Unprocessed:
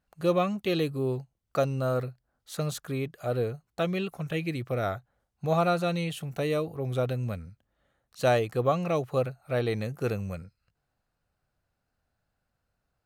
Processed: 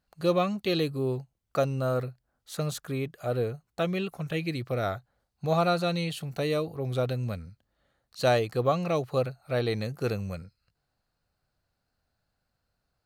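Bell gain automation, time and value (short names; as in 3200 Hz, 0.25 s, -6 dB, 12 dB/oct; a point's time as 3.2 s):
bell 4400 Hz 0.34 oct
0.68 s +8.5 dB
1.2 s +1 dB
4 s +1 dB
4.57 s +8.5 dB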